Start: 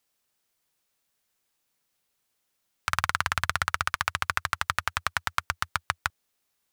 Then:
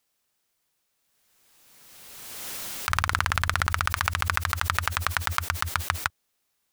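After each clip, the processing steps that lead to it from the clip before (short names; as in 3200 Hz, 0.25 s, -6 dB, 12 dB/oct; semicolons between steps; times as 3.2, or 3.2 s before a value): backwards sustainer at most 26 dB/s; gain +1.5 dB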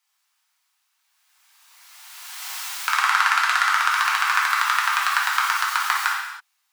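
steep high-pass 800 Hz 48 dB/oct; high shelf 7000 Hz -7 dB; non-linear reverb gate 0.35 s falling, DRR -5 dB; gain +2 dB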